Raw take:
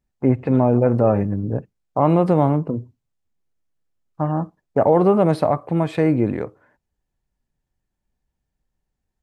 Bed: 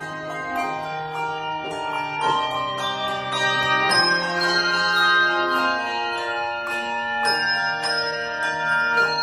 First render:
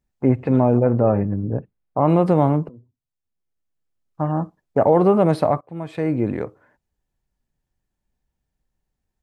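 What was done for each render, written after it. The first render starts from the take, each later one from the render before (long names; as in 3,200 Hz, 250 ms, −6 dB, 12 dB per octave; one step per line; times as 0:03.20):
0:00.79–0:02.08: high-frequency loss of the air 310 metres
0:02.69–0:04.38: fade in, from −22.5 dB
0:05.61–0:06.42: fade in, from −21.5 dB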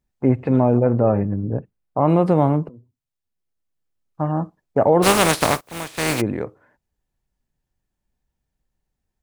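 0:05.02–0:06.20: compressing power law on the bin magnitudes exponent 0.34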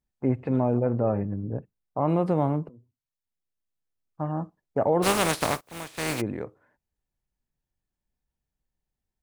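level −7.5 dB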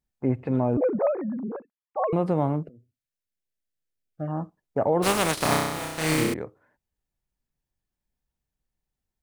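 0:00.77–0:02.13: three sine waves on the formant tracks
0:02.63–0:04.28: Chebyshev band-stop filter 650–1,500 Hz
0:05.34–0:06.34: flutter between parallel walls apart 5.5 metres, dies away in 1.1 s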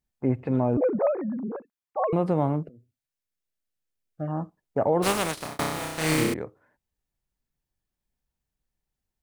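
0:04.84–0:05.59: fade out equal-power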